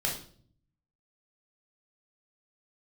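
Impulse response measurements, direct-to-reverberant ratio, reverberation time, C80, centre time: −2.0 dB, 0.50 s, 11.5 dB, 27 ms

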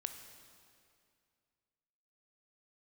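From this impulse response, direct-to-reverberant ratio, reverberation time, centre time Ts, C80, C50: 7.0 dB, 2.3 s, 30 ms, 9.0 dB, 8.0 dB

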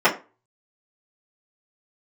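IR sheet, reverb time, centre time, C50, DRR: 0.30 s, 16 ms, 13.0 dB, −10.5 dB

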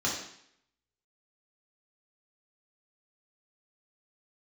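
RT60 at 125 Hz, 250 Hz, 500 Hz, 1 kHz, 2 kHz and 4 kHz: 0.65, 0.70, 0.65, 0.70, 0.70, 0.70 seconds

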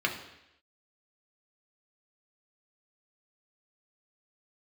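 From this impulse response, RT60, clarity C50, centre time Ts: 0.85 s, 8.5 dB, 23 ms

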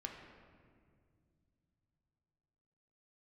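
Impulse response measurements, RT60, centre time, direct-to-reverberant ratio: 2.2 s, 56 ms, 1.0 dB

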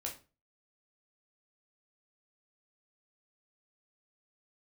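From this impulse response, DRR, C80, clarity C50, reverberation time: −1.5 dB, 16.5 dB, 10.0 dB, 0.35 s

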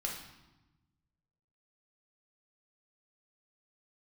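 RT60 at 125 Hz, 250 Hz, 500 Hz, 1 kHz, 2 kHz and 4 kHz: 1.8, 1.5, 1.0, 1.1, 0.90, 0.85 seconds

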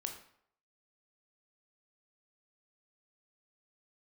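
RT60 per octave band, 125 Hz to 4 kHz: 0.60, 0.55, 0.65, 0.65, 0.55, 0.50 seconds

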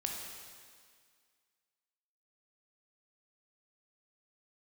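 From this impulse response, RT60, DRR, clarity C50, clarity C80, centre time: 1.9 s, 0.0 dB, 1.5 dB, 3.5 dB, 82 ms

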